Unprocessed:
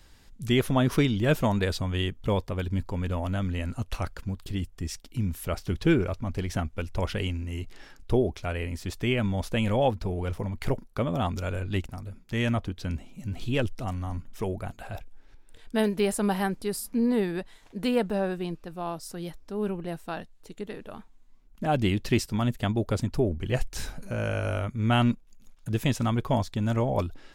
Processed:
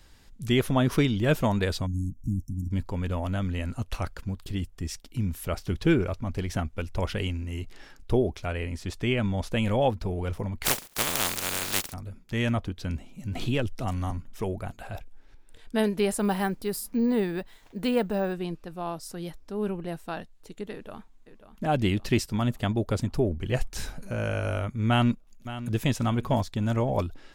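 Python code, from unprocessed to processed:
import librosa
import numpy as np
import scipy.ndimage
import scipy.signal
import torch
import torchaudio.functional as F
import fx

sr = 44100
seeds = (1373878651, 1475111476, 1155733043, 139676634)

y = fx.spec_erase(x, sr, start_s=1.86, length_s=0.85, low_hz=320.0, high_hz=5400.0)
y = fx.bessel_lowpass(y, sr, hz=10000.0, order=2, at=(8.47, 9.51))
y = fx.spec_flatten(y, sr, power=0.16, at=(10.64, 11.92), fade=0.02)
y = fx.band_squash(y, sr, depth_pct=70, at=(13.35, 14.11))
y = fx.resample_bad(y, sr, factor=2, down='none', up='hold', at=(16.19, 18.33))
y = fx.echo_throw(y, sr, start_s=20.72, length_s=0.92, ms=540, feedback_pct=65, wet_db=-12.0)
y = fx.echo_throw(y, sr, start_s=24.88, length_s=0.96, ms=570, feedback_pct=30, wet_db=-13.5)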